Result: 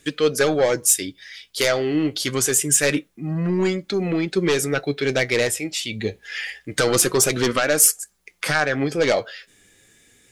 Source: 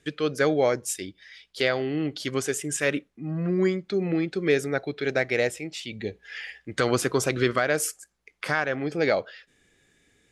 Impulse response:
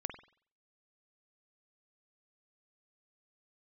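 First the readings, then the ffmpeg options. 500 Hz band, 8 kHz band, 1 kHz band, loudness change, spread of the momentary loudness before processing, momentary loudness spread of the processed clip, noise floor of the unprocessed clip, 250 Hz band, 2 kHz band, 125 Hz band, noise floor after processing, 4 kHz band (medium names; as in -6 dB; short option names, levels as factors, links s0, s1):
+4.0 dB, +14.0 dB, +3.5 dB, +6.0 dB, 12 LU, 13 LU, -69 dBFS, +4.0 dB, +4.0 dB, +4.0 dB, -61 dBFS, +8.5 dB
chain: -af "aeval=exprs='0.376*sin(PI/2*2*val(0)/0.376)':c=same,flanger=delay=3.4:depth=6.7:regen=57:speed=0.26:shape=triangular,aemphasis=mode=production:type=50kf"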